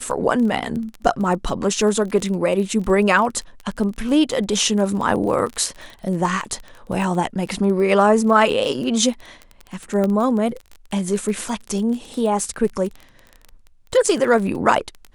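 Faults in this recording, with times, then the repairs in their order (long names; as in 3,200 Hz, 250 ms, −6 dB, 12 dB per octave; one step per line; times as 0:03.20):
surface crackle 22 per second −26 dBFS
0:10.04: click −11 dBFS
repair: click removal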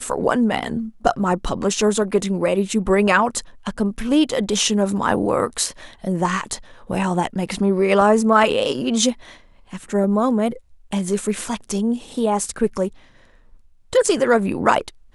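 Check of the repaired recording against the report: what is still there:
0:10.04: click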